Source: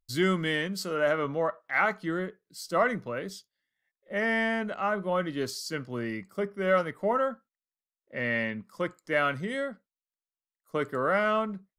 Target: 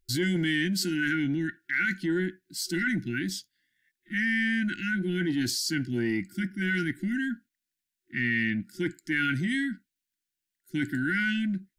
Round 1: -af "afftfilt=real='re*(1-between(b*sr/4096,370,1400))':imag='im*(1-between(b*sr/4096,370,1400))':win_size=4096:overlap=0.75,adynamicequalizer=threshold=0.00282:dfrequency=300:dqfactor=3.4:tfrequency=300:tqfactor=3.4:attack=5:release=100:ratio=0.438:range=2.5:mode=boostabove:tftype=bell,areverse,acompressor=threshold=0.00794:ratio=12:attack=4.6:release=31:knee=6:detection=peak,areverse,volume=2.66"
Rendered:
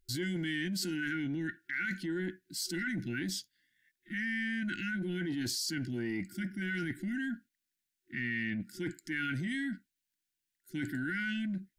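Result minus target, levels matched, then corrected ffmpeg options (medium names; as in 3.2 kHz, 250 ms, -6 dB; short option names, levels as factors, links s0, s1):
compression: peak gain reduction +8.5 dB
-af "afftfilt=real='re*(1-between(b*sr/4096,370,1400))':imag='im*(1-between(b*sr/4096,370,1400))':win_size=4096:overlap=0.75,adynamicequalizer=threshold=0.00282:dfrequency=300:dqfactor=3.4:tfrequency=300:tqfactor=3.4:attack=5:release=100:ratio=0.438:range=2.5:mode=boostabove:tftype=bell,areverse,acompressor=threshold=0.0224:ratio=12:attack=4.6:release=31:knee=6:detection=peak,areverse,volume=2.66"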